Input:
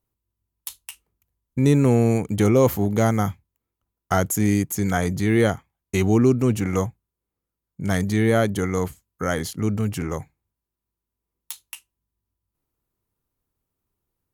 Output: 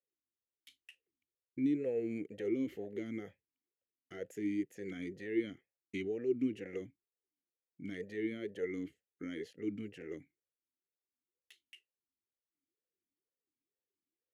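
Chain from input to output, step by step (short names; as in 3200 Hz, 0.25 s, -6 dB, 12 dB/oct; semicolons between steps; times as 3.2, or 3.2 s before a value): limiter -13 dBFS, peak gain reduction 8 dB; vowel sweep e-i 2.1 Hz; gain -3.5 dB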